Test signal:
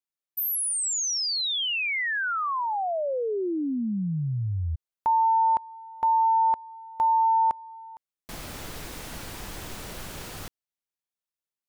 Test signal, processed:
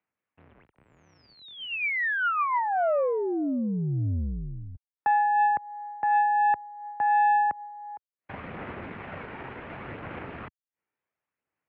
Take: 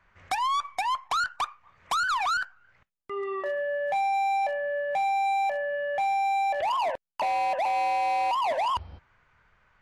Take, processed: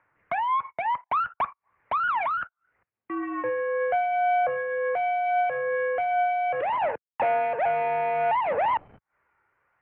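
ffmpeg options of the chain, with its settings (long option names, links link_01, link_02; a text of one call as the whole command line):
ffmpeg -i in.wav -filter_complex "[0:a]agate=range=-37dB:threshold=-48dB:ratio=16:release=50:detection=peak,asplit=2[link_01][link_02];[link_02]alimiter=level_in=3.5dB:limit=-24dB:level=0:latency=1:release=254,volume=-3.5dB,volume=1dB[link_03];[link_01][link_03]amix=inputs=2:normalize=0,acompressor=mode=upward:threshold=-41dB:ratio=2.5:attack=1.1:release=118:knee=2.83:detection=peak,aphaser=in_gain=1:out_gain=1:delay=2.1:decay=0.25:speed=0.69:type=sinusoidal,aeval=exprs='(tanh(7.08*val(0)+0.65)-tanh(0.65))/7.08':channel_layout=same,highpass=frequency=160:width_type=q:width=0.5412,highpass=frequency=160:width_type=q:width=1.307,lowpass=frequency=2500:width_type=q:width=0.5176,lowpass=frequency=2500:width_type=q:width=0.7071,lowpass=frequency=2500:width_type=q:width=1.932,afreqshift=-70" out.wav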